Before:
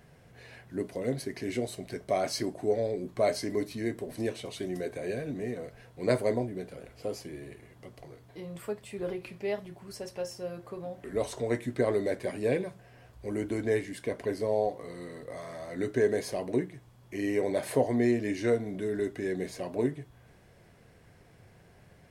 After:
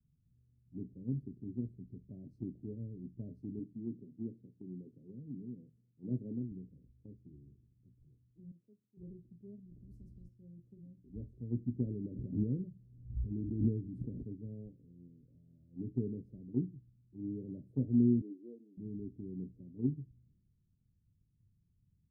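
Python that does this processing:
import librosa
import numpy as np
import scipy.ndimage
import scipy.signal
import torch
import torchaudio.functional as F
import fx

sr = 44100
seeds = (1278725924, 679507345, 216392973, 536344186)

y = fx.highpass(x, sr, hz=140.0, slope=12, at=(3.59, 6.51))
y = fx.weighting(y, sr, curve='A', at=(8.51, 8.97))
y = fx.spectral_comp(y, sr, ratio=10.0, at=(9.69, 10.27), fade=0.02)
y = fx.pre_swell(y, sr, db_per_s=41.0, at=(12.03, 14.22), fade=0.02)
y = fx.highpass(y, sr, hz=330.0, slope=24, at=(18.21, 18.77))
y = scipy.signal.sosfilt(scipy.signal.cheby2(4, 60, 840.0, 'lowpass', fs=sr, output='sos'), y)
y = fx.band_widen(y, sr, depth_pct=70)
y = y * 10.0 ** (-2.0 / 20.0)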